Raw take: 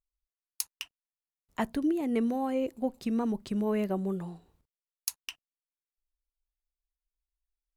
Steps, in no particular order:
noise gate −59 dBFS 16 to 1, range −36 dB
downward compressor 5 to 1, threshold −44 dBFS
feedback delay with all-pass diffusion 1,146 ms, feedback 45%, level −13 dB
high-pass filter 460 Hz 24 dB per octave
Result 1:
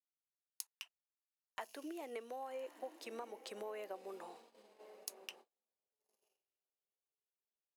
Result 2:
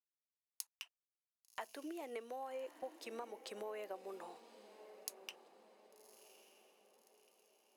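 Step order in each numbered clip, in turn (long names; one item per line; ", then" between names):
high-pass filter, then downward compressor, then feedback delay with all-pass diffusion, then noise gate
high-pass filter, then downward compressor, then noise gate, then feedback delay with all-pass diffusion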